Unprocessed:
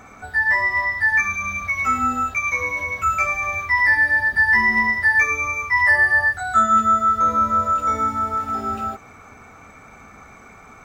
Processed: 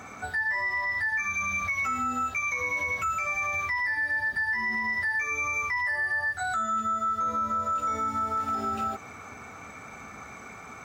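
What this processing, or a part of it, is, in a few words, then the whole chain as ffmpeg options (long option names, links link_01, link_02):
broadcast voice chain: -af "highpass=77,deesser=0.5,acompressor=threshold=-26dB:ratio=4,equalizer=frequency=5100:width_type=o:width=2.3:gain=3.5,alimiter=limit=-22dB:level=0:latency=1:release=39"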